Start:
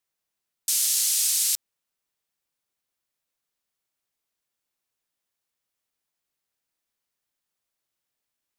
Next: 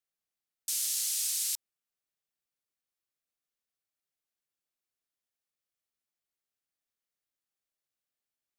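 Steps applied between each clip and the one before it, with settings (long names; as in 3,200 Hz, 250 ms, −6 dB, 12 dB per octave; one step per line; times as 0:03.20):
notch filter 950 Hz, Q 7.1
level −8.5 dB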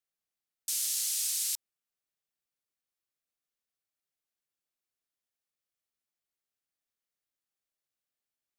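no processing that can be heard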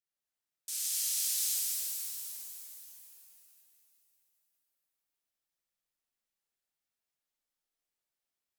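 reverb with rising layers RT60 2.8 s, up +7 semitones, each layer −2 dB, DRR −5.5 dB
level −8 dB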